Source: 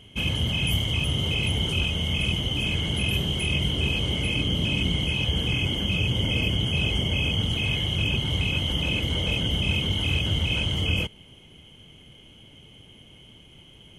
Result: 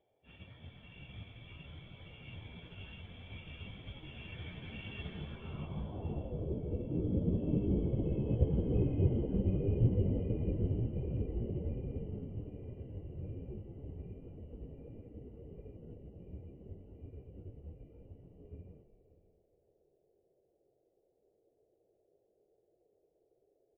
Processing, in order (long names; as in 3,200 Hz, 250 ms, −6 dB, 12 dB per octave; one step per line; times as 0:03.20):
source passing by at 0:05.09, 25 m/s, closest 23 metres
time stretch by phase vocoder 1.7×
high-frequency loss of the air 85 metres
echo with shifted repeats 333 ms, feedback 44%, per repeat −57 Hz, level −10.5 dB
noise in a band 330–750 Hz −62 dBFS
single-tap delay 584 ms −14.5 dB
low-pass filter sweep 2,000 Hz → 440 Hz, 0:05.12–0:06.58
expander for the loud parts 1.5 to 1, over −57 dBFS